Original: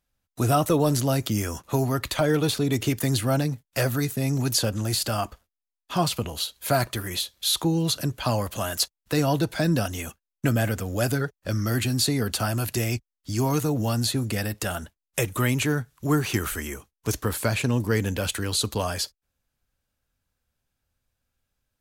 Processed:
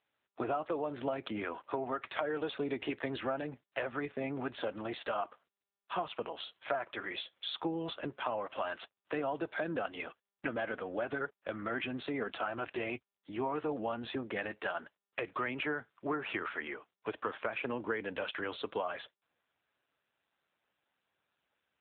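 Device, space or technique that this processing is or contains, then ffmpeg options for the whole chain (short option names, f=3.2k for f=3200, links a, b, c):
voicemail: -af "highpass=450,lowpass=2.7k,acompressor=threshold=-30dB:ratio=10" -ar 8000 -c:a libopencore_amrnb -b:a 7400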